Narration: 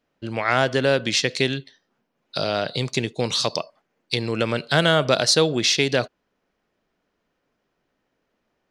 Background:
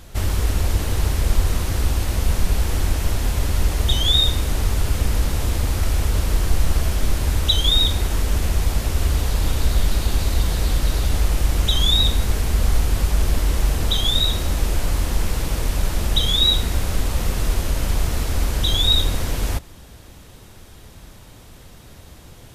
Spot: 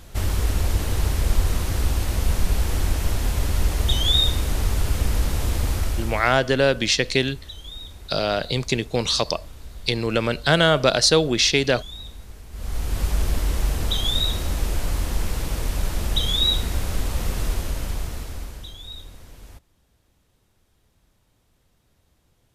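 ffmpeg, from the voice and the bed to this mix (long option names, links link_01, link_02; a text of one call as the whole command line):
ffmpeg -i stem1.wav -i stem2.wav -filter_complex "[0:a]adelay=5750,volume=1dB[link_01];[1:a]volume=15.5dB,afade=type=out:start_time=5.72:duration=0.67:silence=0.112202,afade=type=in:start_time=12.51:duration=0.55:silence=0.133352,afade=type=out:start_time=17.42:duration=1.32:silence=0.125893[link_02];[link_01][link_02]amix=inputs=2:normalize=0" out.wav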